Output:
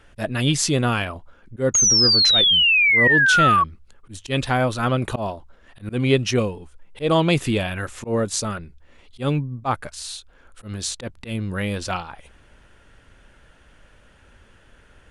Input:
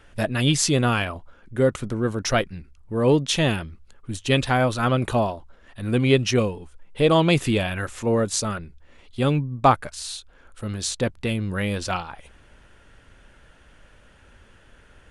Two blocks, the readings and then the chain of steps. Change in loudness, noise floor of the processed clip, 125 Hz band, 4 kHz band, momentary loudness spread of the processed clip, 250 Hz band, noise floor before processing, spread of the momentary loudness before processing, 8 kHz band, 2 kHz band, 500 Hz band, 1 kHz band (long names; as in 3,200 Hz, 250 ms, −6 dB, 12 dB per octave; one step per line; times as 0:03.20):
+4.0 dB, −53 dBFS, −1.0 dB, +10.0 dB, 18 LU, −1.0 dB, −53 dBFS, 15 LU, +7.5 dB, +9.0 dB, −2.0 dB, +1.5 dB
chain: volume swells 109 ms
sound drawn into the spectrogram fall, 0:01.74–0:03.64, 1,100–6,700 Hz −16 dBFS